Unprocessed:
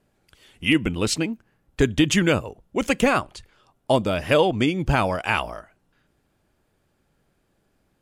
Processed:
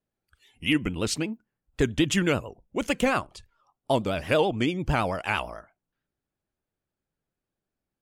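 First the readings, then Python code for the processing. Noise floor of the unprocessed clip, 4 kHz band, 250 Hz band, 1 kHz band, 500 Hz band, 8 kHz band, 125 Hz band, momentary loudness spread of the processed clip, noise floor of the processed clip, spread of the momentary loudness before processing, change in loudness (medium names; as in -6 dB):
-69 dBFS, -4.5 dB, -4.5 dB, -4.5 dB, -4.5 dB, -4.5 dB, -4.5 dB, 10 LU, under -85 dBFS, 10 LU, -4.5 dB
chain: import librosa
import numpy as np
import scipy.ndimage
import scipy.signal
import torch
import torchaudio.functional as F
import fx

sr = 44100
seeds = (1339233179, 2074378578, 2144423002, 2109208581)

y = fx.vibrato(x, sr, rate_hz=9.0, depth_cents=92.0)
y = fx.noise_reduce_blind(y, sr, reduce_db=15)
y = y * 10.0 ** (-4.5 / 20.0)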